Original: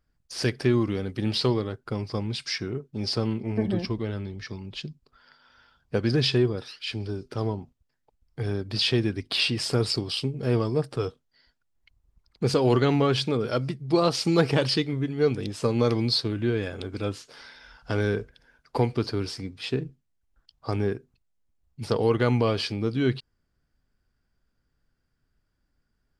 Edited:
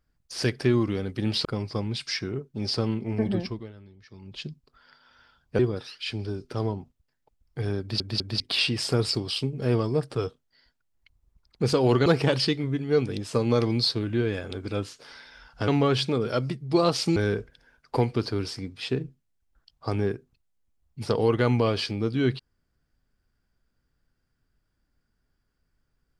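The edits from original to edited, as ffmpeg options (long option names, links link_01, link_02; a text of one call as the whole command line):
ffmpeg -i in.wav -filter_complex "[0:a]asplit=11[link_01][link_02][link_03][link_04][link_05][link_06][link_07][link_08][link_09][link_10][link_11];[link_01]atrim=end=1.452[link_12];[link_02]atrim=start=1.838:end=4.11,asetpts=PTS-STARTPTS,afade=type=out:start_time=1.892:duration=0.38:silence=0.16788[link_13];[link_03]atrim=start=4.11:end=4.48,asetpts=PTS-STARTPTS,volume=-15.5dB[link_14];[link_04]atrim=start=4.48:end=5.982,asetpts=PTS-STARTPTS,afade=type=in:duration=0.38:silence=0.16788[link_15];[link_05]atrim=start=6.398:end=8.812[link_16];[link_06]atrim=start=8.608:end=8.812[link_17];[link_07]atrim=start=8.608:end=8.812[link_18];[link_08]atrim=start=9.208:end=12.872[link_19];[link_09]atrim=start=14.348:end=17.972[link_20];[link_10]atrim=start=12.868:end=14.352[link_21];[link_11]atrim=start=17.968[link_22];[link_13][link_14][link_15]concat=n=3:v=0:a=1[link_23];[link_12][link_23]acrossfade=duration=0.004:curve1=hsin:curve2=hsin[link_24];[link_24][link_16]acrossfade=duration=0.004:curve1=hsin:curve2=hsin[link_25];[link_25][link_17]acrossfade=duration=0.004:curve1=hsin:curve2=hsin[link_26];[link_26][link_18]acrossfade=duration=0.004:curve1=hsin:curve2=hsin[link_27];[link_27][link_19]acrossfade=duration=0.004:curve1=hsin:curve2=hsin[link_28];[link_28][link_20]acrossfade=duration=0.004:curve1=hsin:curve2=hsin[link_29];[link_29][link_21]acrossfade=duration=0.004:curve1=hsin:curve2=hsin[link_30];[link_30][link_22]acrossfade=duration=0.004:curve1=hsin:curve2=hsin" out.wav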